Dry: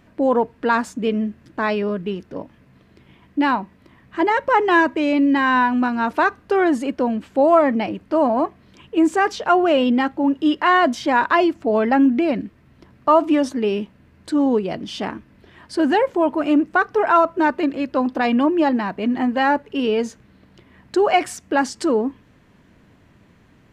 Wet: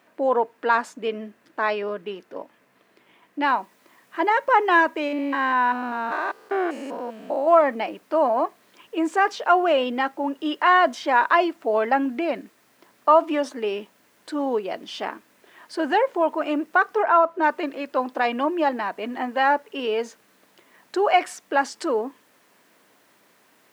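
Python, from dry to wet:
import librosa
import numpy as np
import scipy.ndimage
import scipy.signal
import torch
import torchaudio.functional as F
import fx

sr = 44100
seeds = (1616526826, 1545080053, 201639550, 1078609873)

y = fx.noise_floor_step(x, sr, seeds[0], at_s=3.47, before_db=-69, after_db=-59, tilt_db=0.0)
y = fx.spec_steps(y, sr, hold_ms=200, at=(5.07, 7.46), fade=0.02)
y = fx.high_shelf(y, sr, hz=2900.0, db=-10.5, at=(17.02, 17.42), fade=0.02)
y = scipy.signal.sosfilt(scipy.signal.butter(2, 490.0, 'highpass', fs=sr, output='sos'), y)
y = fx.high_shelf(y, sr, hz=3700.0, db=-6.5)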